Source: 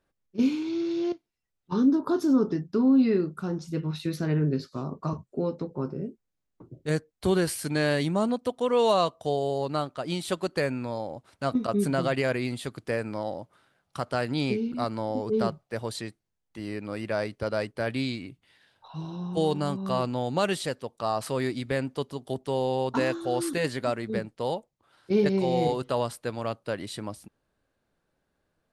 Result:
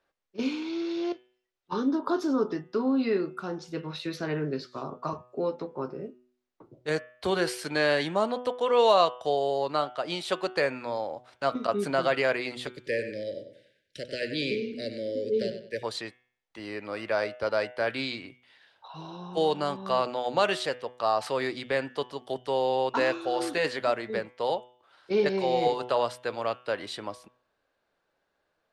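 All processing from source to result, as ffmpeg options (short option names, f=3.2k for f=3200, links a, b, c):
-filter_complex "[0:a]asettb=1/sr,asplit=3[a][b][c];[a]atrim=end=12.674[d];[b]atrim=start=12.67:end=15.83,asetpts=PTS-STARTPTS,afade=t=in:d=0.004:c=qsin,afade=t=out:st=3.156:d=0.004:c=qsin,asuperstop=centerf=990:order=12:qfactor=0.88,asplit=2[e][f];[f]adelay=95,lowpass=f=5k:p=1,volume=-9dB,asplit=2[g][h];[h]adelay=95,lowpass=f=5k:p=1,volume=0.33,asplit=2[i][j];[j]adelay=95,lowpass=f=5k:p=1,volume=0.33,asplit=2[k][l];[l]adelay=95,lowpass=f=5k:p=1,volume=0.33[m];[e][g][i][k][m]amix=inputs=5:normalize=0,atrim=end_sample=139356[n];[c]atrim=start=15.826[o];[d][n]acrossfade=d=0.004:c1=hsin:c2=qsin[p];[p][o]acrossfade=d=0.004:c1=qsin:c2=hsin,acrossover=split=390 6000:gain=0.2 1 0.2[q][r][s];[q][r][s]amix=inputs=3:normalize=0,bandreject=f=124:t=h:w=4,bandreject=f=248:t=h:w=4,bandreject=f=372:t=h:w=4,bandreject=f=496:t=h:w=4,bandreject=f=620:t=h:w=4,bandreject=f=744:t=h:w=4,bandreject=f=868:t=h:w=4,bandreject=f=992:t=h:w=4,bandreject=f=1.116k:t=h:w=4,bandreject=f=1.24k:t=h:w=4,bandreject=f=1.364k:t=h:w=4,bandreject=f=1.488k:t=h:w=4,bandreject=f=1.612k:t=h:w=4,bandreject=f=1.736k:t=h:w=4,bandreject=f=1.86k:t=h:w=4,bandreject=f=1.984k:t=h:w=4,bandreject=f=2.108k:t=h:w=4,bandreject=f=2.232k:t=h:w=4,bandreject=f=2.356k:t=h:w=4,bandreject=f=2.48k:t=h:w=4,bandreject=f=2.604k:t=h:w=4,bandreject=f=2.728k:t=h:w=4,bandreject=f=2.852k:t=h:w=4,bandreject=f=2.976k:t=h:w=4,bandreject=f=3.1k:t=h:w=4,bandreject=f=3.224k:t=h:w=4,bandreject=f=3.348k:t=h:w=4,bandreject=f=3.472k:t=h:w=4,bandreject=f=3.596k:t=h:w=4,volume=3.5dB"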